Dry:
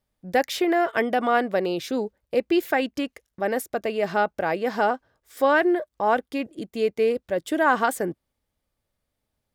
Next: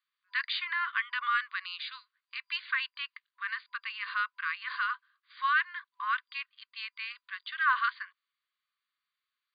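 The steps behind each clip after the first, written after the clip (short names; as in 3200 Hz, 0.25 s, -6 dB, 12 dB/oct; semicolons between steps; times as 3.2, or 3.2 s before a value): FFT band-pass 1000–4800 Hz; in parallel at -2 dB: limiter -22 dBFS, peak gain reduction 10 dB; on the sum: gain -5.5 dB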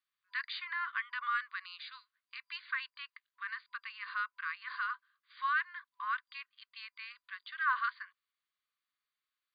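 dynamic EQ 3000 Hz, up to -6 dB, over -47 dBFS, Q 1.5; gain -4 dB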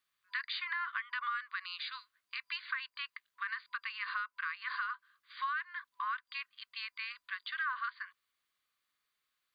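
compressor 5:1, threshold -41 dBFS, peak gain reduction 13.5 dB; gain +6.5 dB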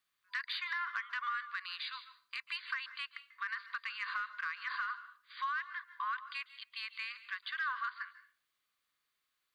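soft clip -25 dBFS, distortion -26 dB; on a send at -13 dB: reverb RT60 0.40 s, pre-delay 0.137 s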